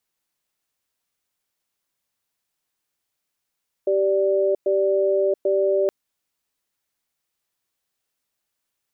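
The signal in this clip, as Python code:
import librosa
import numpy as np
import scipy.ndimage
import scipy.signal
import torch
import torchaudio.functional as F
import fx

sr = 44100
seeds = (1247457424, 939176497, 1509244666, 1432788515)

y = fx.cadence(sr, length_s=2.02, low_hz=389.0, high_hz=586.0, on_s=0.68, off_s=0.11, level_db=-19.5)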